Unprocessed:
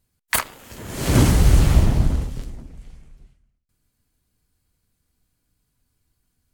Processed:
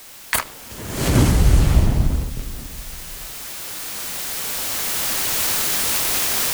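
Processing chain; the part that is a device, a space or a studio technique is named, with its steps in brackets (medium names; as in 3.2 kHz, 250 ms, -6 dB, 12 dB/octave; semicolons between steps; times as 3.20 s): cheap recorder with automatic gain (white noise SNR 20 dB; recorder AGC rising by 6.5 dB/s)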